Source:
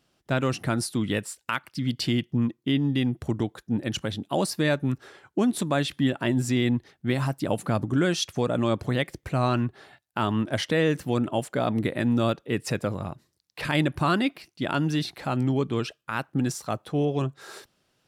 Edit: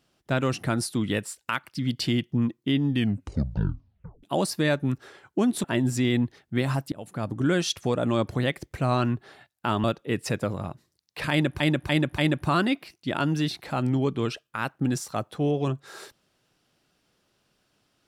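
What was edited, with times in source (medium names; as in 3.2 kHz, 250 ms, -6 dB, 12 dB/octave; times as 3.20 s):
2.90 s: tape stop 1.33 s
5.64–6.16 s: delete
7.44–8.03 s: fade in, from -22.5 dB
10.36–12.25 s: delete
13.72–14.01 s: loop, 4 plays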